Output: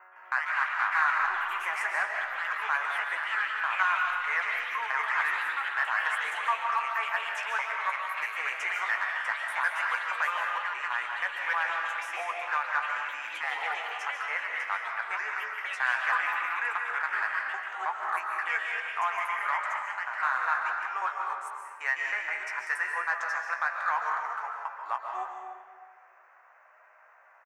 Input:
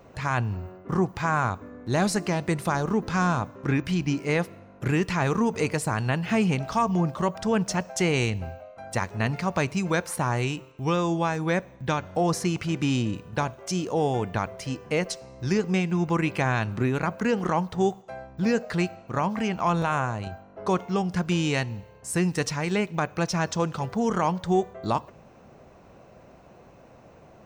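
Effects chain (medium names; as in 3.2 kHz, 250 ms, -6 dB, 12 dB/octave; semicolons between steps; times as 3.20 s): slices played last to first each 158 ms, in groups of 5; high-pass 940 Hz 24 dB/octave; resonant high shelf 2.6 kHz -13 dB, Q 3; in parallel at -10 dB: hard clipper -21 dBFS, distortion -11 dB; on the sum: band-stop 4.1 kHz, Q 27; doubling 16 ms -8 dB; ever faster or slower copies 119 ms, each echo +3 st, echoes 3, each echo -6 dB; on a send at -1 dB: reverberation RT60 1.7 s, pre-delay 100 ms; on the sum: trim -5.5 dB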